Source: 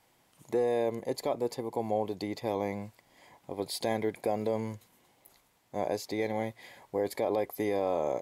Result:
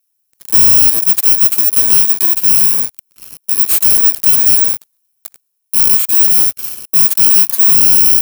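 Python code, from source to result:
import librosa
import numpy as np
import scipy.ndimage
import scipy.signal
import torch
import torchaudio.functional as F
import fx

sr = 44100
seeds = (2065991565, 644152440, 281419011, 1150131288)

y = fx.bit_reversed(x, sr, seeds[0], block=64)
y = fx.riaa(y, sr, side='recording')
y = fx.leveller(y, sr, passes=5)
y = y * 10.0 ** (-5.0 / 20.0)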